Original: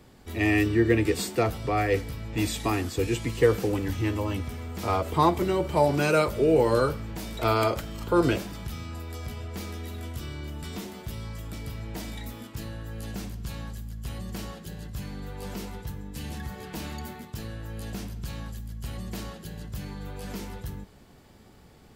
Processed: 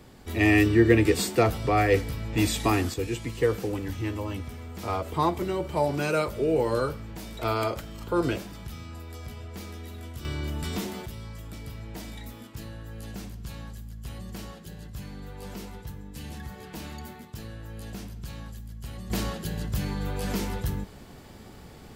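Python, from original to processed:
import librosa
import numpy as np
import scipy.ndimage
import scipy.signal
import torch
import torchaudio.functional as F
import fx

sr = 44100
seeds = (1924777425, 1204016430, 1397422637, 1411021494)

y = fx.gain(x, sr, db=fx.steps((0.0, 3.0), (2.94, -3.5), (10.25, 5.0), (11.06, -3.0), (19.1, 7.0)))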